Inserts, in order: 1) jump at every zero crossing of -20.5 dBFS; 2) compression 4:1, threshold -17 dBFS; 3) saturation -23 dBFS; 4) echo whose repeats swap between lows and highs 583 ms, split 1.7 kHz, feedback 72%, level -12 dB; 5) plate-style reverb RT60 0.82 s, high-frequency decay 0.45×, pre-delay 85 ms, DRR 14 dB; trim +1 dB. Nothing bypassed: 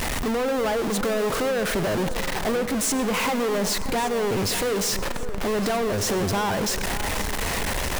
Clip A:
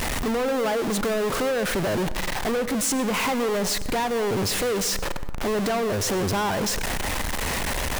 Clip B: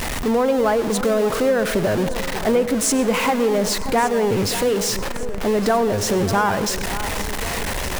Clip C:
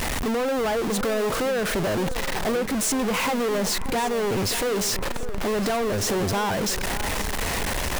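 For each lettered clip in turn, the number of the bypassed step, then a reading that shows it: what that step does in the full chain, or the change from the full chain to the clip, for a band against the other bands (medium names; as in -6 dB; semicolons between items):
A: 4, echo-to-direct -9.5 dB to -14.0 dB; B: 3, distortion -9 dB; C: 5, echo-to-direct -9.5 dB to -11.5 dB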